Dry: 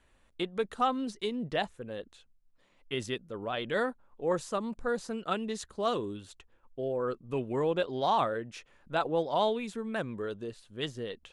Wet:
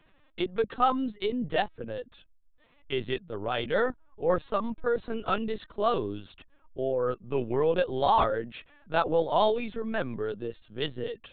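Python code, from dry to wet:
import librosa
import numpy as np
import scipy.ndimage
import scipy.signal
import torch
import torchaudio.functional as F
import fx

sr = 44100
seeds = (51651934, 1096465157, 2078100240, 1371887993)

y = fx.lpc_vocoder(x, sr, seeds[0], excitation='pitch_kept', order=16)
y = F.gain(torch.from_numpy(y), 4.0).numpy()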